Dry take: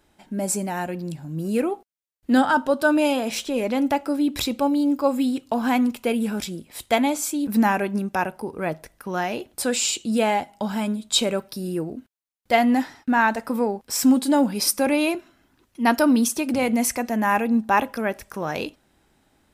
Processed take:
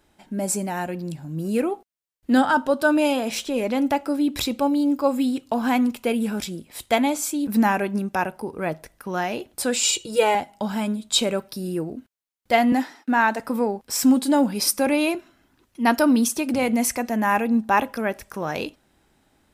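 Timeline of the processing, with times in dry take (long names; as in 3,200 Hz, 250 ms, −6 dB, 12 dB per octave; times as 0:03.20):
0:09.83–0:10.35: comb filter 2.1 ms, depth 92%
0:12.72–0:13.40: high-pass filter 210 Hz 24 dB per octave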